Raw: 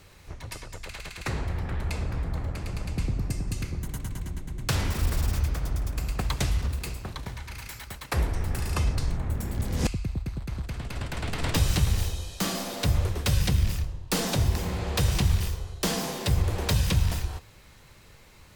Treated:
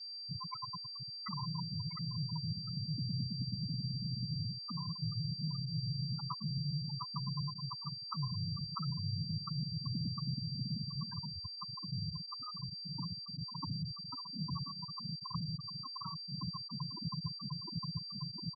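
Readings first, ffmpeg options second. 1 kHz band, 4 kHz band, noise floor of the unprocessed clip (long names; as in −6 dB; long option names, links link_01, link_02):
−9.5 dB, −3.0 dB, −52 dBFS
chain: -af "aresample=16000,aeval=exprs='(mod(5.31*val(0)+1,2)-1)/5.31':channel_layout=same,aresample=44100,lowshelf=frequency=710:width_type=q:width=3:gain=-9,afreqshift=82,aecho=1:1:706|1412|2118|2824|3530|4236|4942:0.562|0.304|0.164|0.0885|0.0478|0.0258|0.0139,areverse,acompressor=threshold=-43dB:ratio=8,areverse,asoftclip=type=tanh:threshold=-34dB,aeval=exprs='val(0)+0.00282*sin(2*PI*4700*n/s)':channel_layout=same,acompressor=mode=upward:threshold=-53dB:ratio=2.5,afftfilt=real='re*gte(hypot(re,im),0.0251)':imag='im*gte(hypot(re,im),0.0251)':win_size=1024:overlap=0.75,volume=10dB"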